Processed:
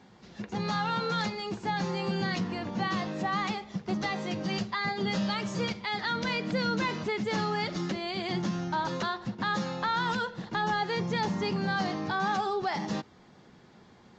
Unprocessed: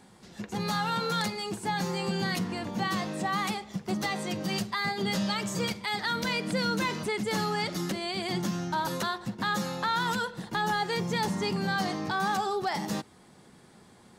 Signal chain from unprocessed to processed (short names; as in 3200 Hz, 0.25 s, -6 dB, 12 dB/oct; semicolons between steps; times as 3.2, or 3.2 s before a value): air absorption 93 m; Vorbis 48 kbps 16000 Hz